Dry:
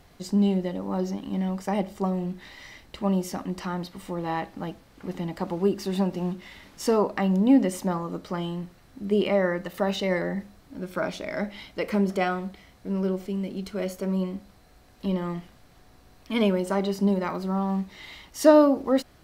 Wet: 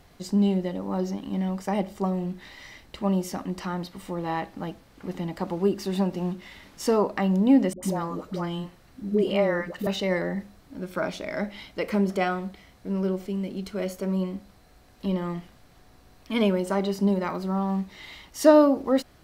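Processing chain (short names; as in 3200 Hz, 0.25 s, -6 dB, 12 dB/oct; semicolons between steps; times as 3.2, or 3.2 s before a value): 7.73–9.87 dispersion highs, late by 97 ms, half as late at 580 Hz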